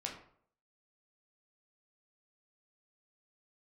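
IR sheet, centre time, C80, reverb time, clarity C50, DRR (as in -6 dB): 26 ms, 10.0 dB, 0.60 s, 7.0 dB, -0.5 dB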